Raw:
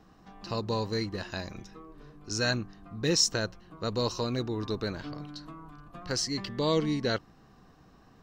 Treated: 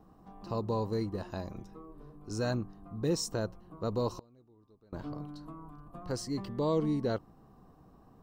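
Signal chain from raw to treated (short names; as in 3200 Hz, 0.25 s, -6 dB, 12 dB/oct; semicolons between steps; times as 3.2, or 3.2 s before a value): band shelf 3200 Hz -12.5 dB 2.5 oct; in parallel at -2 dB: limiter -24 dBFS, peak gain reduction 7.5 dB; 4.12–4.93 on the sum: flipped gate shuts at -25 dBFS, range -29 dB; gain -5.5 dB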